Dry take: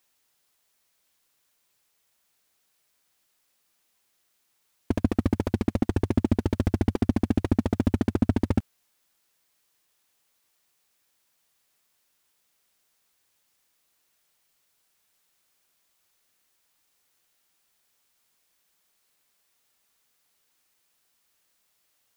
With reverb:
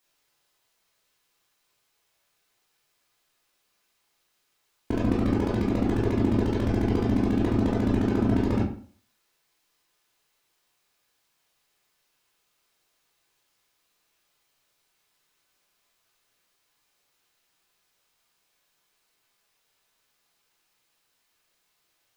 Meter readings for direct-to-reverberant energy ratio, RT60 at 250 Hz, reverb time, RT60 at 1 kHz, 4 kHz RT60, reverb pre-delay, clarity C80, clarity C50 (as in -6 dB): -5.5 dB, 0.45 s, 0.45 s, 0.45 s, 0.35 s, 13 ms, 9.0 dB, 4.5 dB